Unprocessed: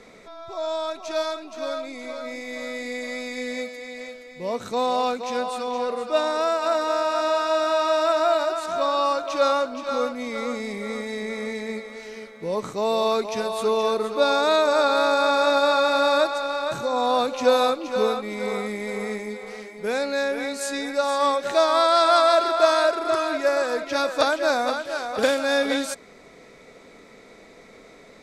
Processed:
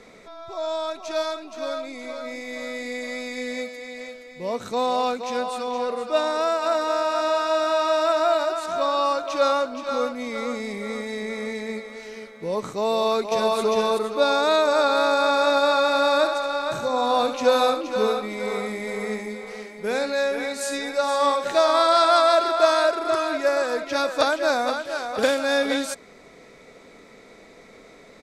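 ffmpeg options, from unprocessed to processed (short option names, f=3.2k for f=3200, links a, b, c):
-filter_complex "[0:a]asplit=2[a][b];[b]afade=t=in:st=12.91:d=0.01,afade=t=out:st=13.58:d=0.01,aecho=0:1:400|800:0.794328|0.0794328[c];[a][c]amix=inputs=2:normalize=0,asettb=1/sr,asplit=3[d][e][f];[d]atrim=end=16.164[g];[e]atrim=start=16.16:end=22.05,asetpts=PTS-STARTPTS,afade=t=in:d=0.004:c=qsin,afade=t=out:st=5.886:d=0.004:c=qsin,aecho=1:1:70:0.376,atrim=end_sample=259749[h];[f]atrim=start=22.046[i];[g][h]acrossfade=d=0.004:c1=hsin:c2=qsin[j];[j][i]acrossfade=d=0.004:c1=qsin:c2=hsin"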